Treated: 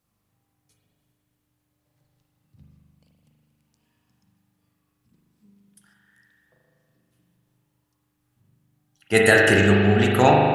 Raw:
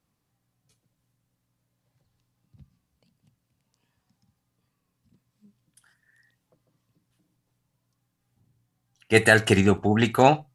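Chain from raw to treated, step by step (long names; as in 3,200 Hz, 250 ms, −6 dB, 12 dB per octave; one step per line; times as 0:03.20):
high-shelf EQ 9,500 Hz +8 dB
spring reverb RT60 2.1 s, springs 40 ms, chirp 65 ms, DRR −2.5 dB
level −1 dB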